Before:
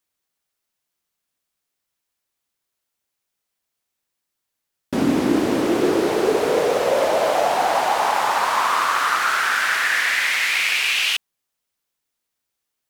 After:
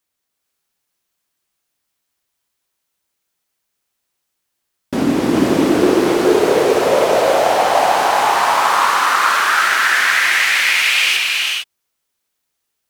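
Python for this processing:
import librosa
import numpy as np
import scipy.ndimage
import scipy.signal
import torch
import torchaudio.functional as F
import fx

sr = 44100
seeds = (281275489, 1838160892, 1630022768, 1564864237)

y = fx.highpass(x, sr, hz=160.0, slope=24, at=(8.58, 9.73))
y = fx.rev_gated(y, sr, seeds[0], gate_ms=480, shape='rising', drr_db=0.0)
y = y * librosa.db_to_amplitude(2.5)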